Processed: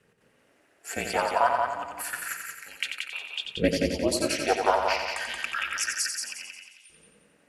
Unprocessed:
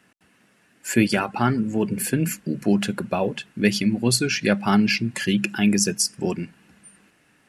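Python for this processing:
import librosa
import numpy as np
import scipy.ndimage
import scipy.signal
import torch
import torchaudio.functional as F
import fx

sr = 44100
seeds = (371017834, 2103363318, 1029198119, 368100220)

y = fx.filter_lfo_highpass(x, sr, shape='saw_up', hz=0.29, low_hz=300.0, high_hz=3500.0, q=4.9)
y = y * np.sin(2.0 * np.pi * 140.0 * np.arange(len(y)) / sr)
y = fx.echo_heads(y, sr, ms=89, heads='first and second', feedback_pct=47, wet_db=-6.0)
y = F.gain(torch.from_numpy(y), -5.5).numpy()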